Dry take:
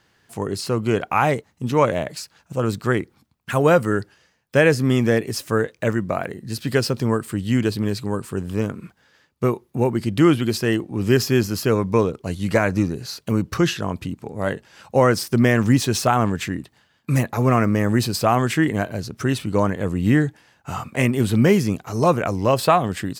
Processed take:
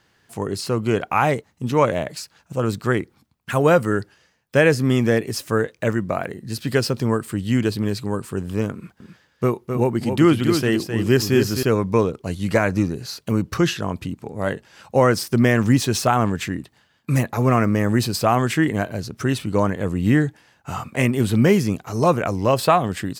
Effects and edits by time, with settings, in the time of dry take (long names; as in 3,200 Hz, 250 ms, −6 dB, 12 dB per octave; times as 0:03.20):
0:08.74–0:11.63: single-tap delay 261 ms −6.5 dB